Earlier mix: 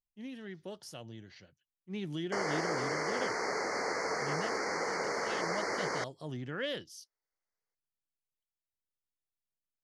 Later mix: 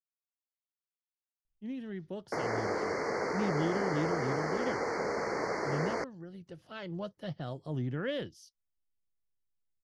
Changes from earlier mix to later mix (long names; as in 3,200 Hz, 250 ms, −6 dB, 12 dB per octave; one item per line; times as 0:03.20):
speech: entry +1.45 s
master: add spectral tilt −2.5 dB per octave